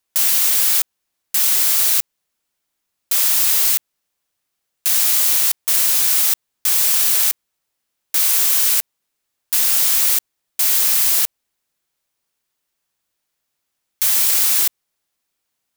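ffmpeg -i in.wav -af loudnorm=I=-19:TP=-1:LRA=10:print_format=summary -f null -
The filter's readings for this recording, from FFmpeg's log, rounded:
Input Integrated:    -14.0 LUFS
Input True Peak:      -1.3 dBTP
Input LRA:             4.2 LU
Input Threshold:     -24.2 LUFS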